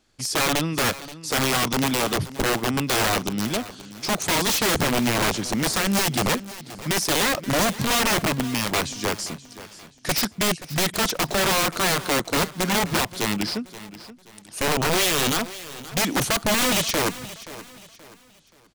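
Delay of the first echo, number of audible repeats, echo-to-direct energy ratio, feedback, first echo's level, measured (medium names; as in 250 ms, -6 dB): 527 ms, 3, -15.5 dB, 36%, -16.0 dB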